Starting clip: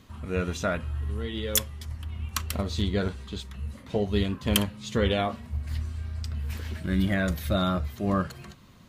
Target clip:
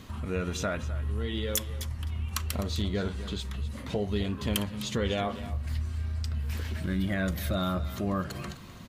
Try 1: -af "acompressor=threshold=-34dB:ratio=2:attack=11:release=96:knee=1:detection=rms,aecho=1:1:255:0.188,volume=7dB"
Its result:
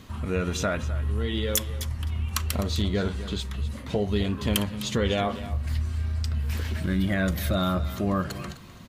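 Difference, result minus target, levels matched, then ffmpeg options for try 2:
compressor: peak gain reduction -4 dB
-af "acompressor=threshold=-42.5dB:ratio=2:attack=11:release=96:knee=1:detection=rms,aecho=1:1:255:0.188,volume=7dB"

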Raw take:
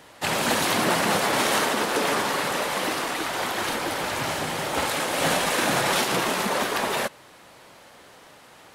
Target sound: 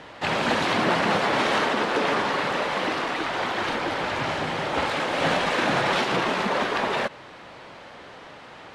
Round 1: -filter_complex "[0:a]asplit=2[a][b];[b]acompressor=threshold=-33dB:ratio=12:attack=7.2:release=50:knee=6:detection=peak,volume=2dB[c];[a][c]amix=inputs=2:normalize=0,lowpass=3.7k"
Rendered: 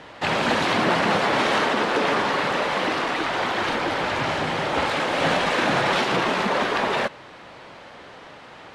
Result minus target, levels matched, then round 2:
compressor: peak gain reduction -11 dB
-filter_complex "[0:a]asplit=2[a][b];[b]acompressor=threshold=-45dB:ratio=12:attack=7.2:release=50:knee=6:detection=peak,volume=2dB[c];[a][c]amix=inputs=2:normalize=0,lowpass=3.7k"

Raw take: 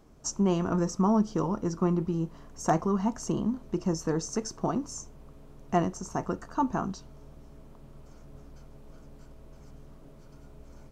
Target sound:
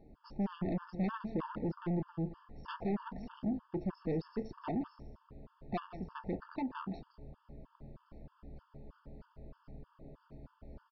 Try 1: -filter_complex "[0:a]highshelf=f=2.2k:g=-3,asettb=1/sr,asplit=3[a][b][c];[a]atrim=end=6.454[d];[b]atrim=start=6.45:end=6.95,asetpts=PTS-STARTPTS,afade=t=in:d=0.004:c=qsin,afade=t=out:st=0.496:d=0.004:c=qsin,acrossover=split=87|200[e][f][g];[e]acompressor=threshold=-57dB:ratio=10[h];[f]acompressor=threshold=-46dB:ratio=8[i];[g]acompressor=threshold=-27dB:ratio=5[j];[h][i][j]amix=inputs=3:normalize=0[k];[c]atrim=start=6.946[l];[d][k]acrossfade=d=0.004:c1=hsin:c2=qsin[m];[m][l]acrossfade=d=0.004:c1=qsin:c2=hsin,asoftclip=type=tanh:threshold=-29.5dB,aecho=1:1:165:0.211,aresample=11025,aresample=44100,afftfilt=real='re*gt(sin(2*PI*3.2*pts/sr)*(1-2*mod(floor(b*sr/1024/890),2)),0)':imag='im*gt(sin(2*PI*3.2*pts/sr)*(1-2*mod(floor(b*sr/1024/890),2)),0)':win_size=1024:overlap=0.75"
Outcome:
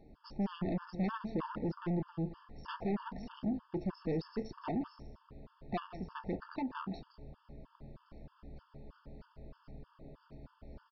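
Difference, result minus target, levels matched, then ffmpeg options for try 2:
4000 Hz band +4.0 dB
-filter_complex "[0:a]highshelf=f=2.2k:g=-11.5,asettb=1/sr,asplit=3[a][b][c];[a]atrim=end=6.454[d];[b]atrim=start=6.45:end=6.95,asetpts=PTS-STARTPTS,afade=t=in:d=0.004:c=qsin,afade=t=out:st=0.496:d=0.004:c=qsin,acrossover=split=87|200[e][f][g];[e]acompressor=threshold=-57dB:ratio=10[h];[f]acompressor=threshold=-46dB:ratio=8[i];[g]acompressor=threshold=-27dB:ratio=5[j];[h][i][j]amix=inputs=3:normalize=0[k];[c]atrim=start=6.946[l];[d][k]acrossfade=d=0.004:c1=hsin:c2=qsin[m];[m][l]acrossfade=d=0.004:c1=qsin:c2=hsin,asoftclip=type=tanh:threshold=-29.5dB,aecho=1:1:165:0.211,aresample=11025,aresample=44100,afftfilt=real='re*gt(sin(2*PI*3.2*pts/sr)*(1-2*mod(floor(b*sr/1024/890),2)),0)':imag='im*gt(sin(2*PI*3.2*pts/sr)*(1-2*mod(floor(b*sr/1024/890),2)),0)':win_size=1024:overlap=0.75"

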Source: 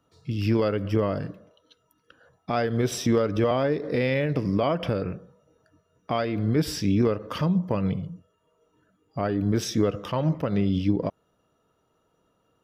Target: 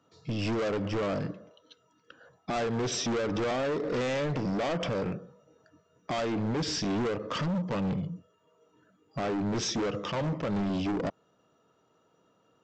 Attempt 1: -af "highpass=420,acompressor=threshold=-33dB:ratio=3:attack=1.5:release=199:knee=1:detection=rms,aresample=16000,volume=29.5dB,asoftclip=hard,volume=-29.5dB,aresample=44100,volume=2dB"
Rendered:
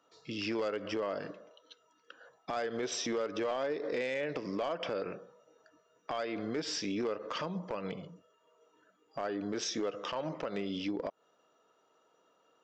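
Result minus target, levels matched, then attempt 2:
compressor: peak gain reduction +11.5 dB; 125 Hz band -9.0 dB
-af "highpass=130,aresample=16000,volume=29.5dB,asoftclip=hard,volume=-29.5dB,aresample=44100,volume=2dB"

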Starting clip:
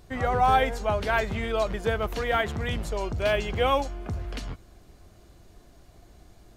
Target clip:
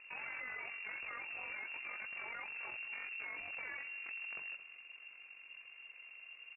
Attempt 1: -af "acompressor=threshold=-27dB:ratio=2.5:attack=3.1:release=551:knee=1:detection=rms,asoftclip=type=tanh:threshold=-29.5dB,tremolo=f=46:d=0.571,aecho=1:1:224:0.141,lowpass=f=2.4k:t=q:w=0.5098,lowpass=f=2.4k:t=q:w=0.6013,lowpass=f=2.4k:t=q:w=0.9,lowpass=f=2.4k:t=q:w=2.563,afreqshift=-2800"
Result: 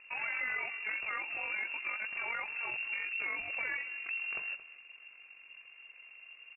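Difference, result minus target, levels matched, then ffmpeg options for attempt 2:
soft clip: distortion -7 dB
-af "acompressor=threshold=-27dB:ratio=2.5:attack=3.1:release=551:knee=1:detection=rms,asoftclip=type=tanh:threshold=-41dB,tremolo=f=46:d=0.571,aecho=1:1:224:0.141,lowpass=f=2.4k:t=q:w=0.5098,lowpass=f=2.4k:t=q:w=0.6013,lowpass=f=2.4k:t=q:w=0.9,lowpass=f=2.4k:t=q:w=2.563,afreqshift=-2800"

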